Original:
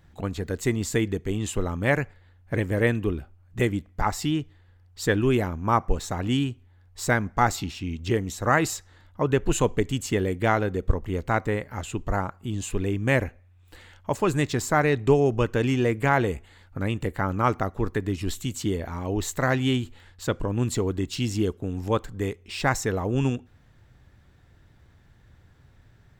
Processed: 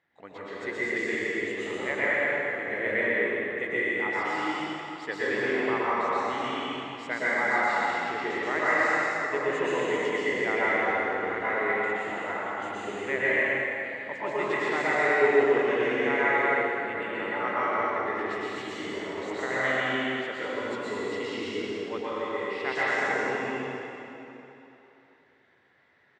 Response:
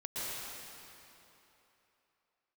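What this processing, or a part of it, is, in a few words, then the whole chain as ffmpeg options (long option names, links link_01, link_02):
station announcement: -filter_complex "[0:a]highpass=380,lowpass=3700,equalizer=frequency=2000:width_type=o:width=0.26:gain=11,aecho=1:1:125.4|209.9:0.562|0.501[link_01];[1:a]atrim=start_sample=2205[link_02];[link_01][link_02]afir=irnorm=-1:irlink=0,volume=-6dB"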